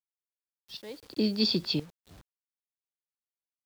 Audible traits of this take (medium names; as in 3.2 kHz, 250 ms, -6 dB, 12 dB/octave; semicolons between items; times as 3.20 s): random-step tremolo 3.9 Hz, depth 90%; a quantiser's noise floor 10-bit, dither none